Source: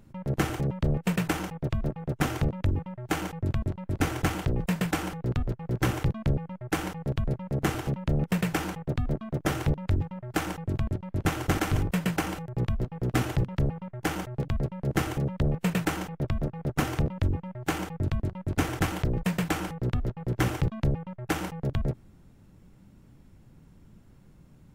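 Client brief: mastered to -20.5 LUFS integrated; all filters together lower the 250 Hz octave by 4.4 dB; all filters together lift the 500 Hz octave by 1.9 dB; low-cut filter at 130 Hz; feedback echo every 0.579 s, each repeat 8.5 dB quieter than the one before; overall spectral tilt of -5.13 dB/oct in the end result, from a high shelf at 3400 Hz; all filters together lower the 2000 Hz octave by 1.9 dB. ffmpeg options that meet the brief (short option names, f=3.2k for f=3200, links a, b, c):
-af "highpass=130,equalizer=f=250:t=o:g=-7.5,equalizer=f=500:t=o:g=5,equalizer=f=2k:t=o:g=-3.5,highshelf=f=3.4k:g=3,aecho=1:1:579|1158|1737|2316:0.376|0.143|0.0543|0.0206,volume=11.5dB"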